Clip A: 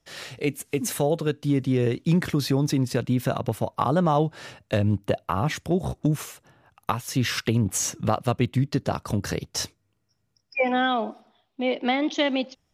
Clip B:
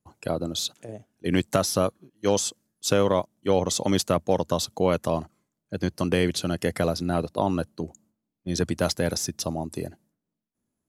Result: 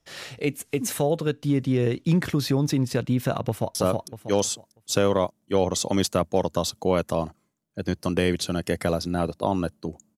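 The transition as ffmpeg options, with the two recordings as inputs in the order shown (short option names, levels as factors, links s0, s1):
-filter_complex "[0:a]apad=whole_dur=10.17,atrim=end=10.17,atrim=end=3.752[s0];[1:a]atrim=start=1.698:end=8.12[s1];[s0][s1]acrossfade=d=0.004:c1=hsin:c2=hsin,asplit=2[s2][s3];[s3]afade=t=in:st=3.48:d=0.01,afade=t=out:st=3.75:d=0.01,aecho=0:1:320|640|960|1280:0.794328|0.238298|0.0714895|0.0214469[s4];[s2][s4]amix=inputs=2:normalize=0"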